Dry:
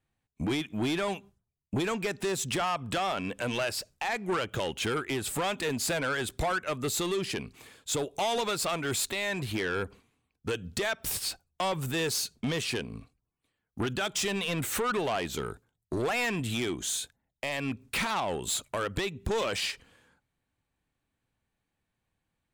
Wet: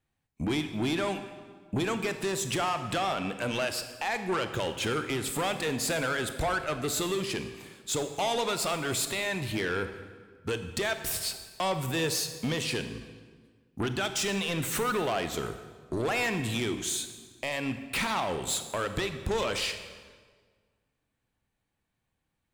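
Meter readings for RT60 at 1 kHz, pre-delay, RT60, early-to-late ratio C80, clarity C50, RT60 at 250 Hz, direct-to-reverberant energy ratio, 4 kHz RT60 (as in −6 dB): 1.5 s, 24 ms, 1.6 s, 11.0 dB, 9.5 dB, 1.8 s, 8.5 dB, 1.2 s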